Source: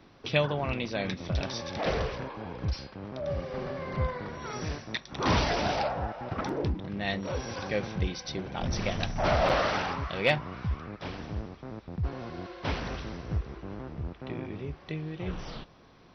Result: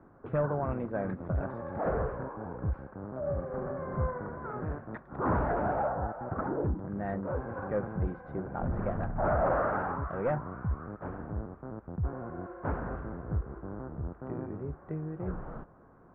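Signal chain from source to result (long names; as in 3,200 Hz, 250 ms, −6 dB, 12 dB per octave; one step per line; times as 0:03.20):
gain into a clipping stage and back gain 22.5 dB
Chebyshev low-pass filter 1,500 Hz, order 4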